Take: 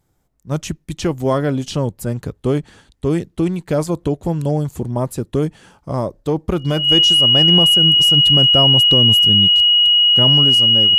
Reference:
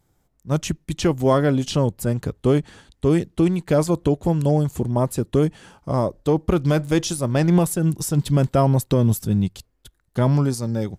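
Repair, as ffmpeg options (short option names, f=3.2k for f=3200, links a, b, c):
-af "bandreject=f=2.9k:w=30"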